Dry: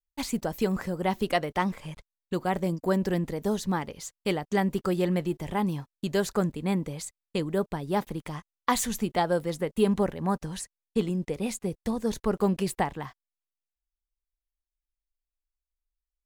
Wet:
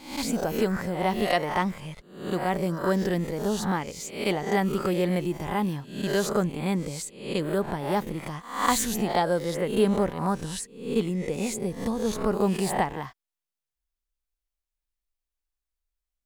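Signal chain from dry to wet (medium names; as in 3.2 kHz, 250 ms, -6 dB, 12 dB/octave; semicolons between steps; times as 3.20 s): reverse spectral sustain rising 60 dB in 0.56 s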